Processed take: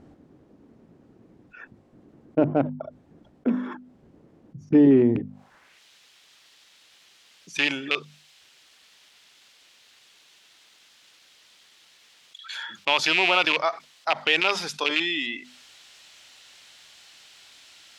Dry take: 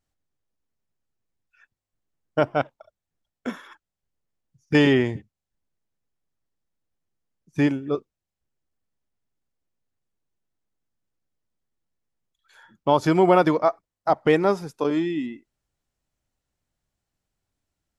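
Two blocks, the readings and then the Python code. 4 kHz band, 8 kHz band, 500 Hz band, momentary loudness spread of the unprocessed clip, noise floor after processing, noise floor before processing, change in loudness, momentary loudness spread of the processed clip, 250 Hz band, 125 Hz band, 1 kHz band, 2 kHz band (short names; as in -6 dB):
+10.5 dB, n/a, -4.5 dB, 17 LU, -58 dBFS, under -85 dBFS, -1.0 dB, 17 LU, 0.0 dB, -5.0 dB, -4.0 dB, +6.0 dB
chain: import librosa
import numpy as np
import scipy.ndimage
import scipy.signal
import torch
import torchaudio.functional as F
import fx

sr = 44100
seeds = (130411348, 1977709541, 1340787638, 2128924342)

y = fx.rattle_buzz(x, sr, strikes_db=-28.0, level_db=-18.0)
y = fx.hum_notches(y, sr, base_hz=50, count=5)
y = fx.filter_sweep_bandpass(y, sr, from_hz=270.0, to_hz=3400.0, start_s=5.11, end_s=5.83, q=1.6)
y = fx.env_flatten(y, sr, amount_pct=50)
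y = y * librosa.db_to_amplitude(3.5)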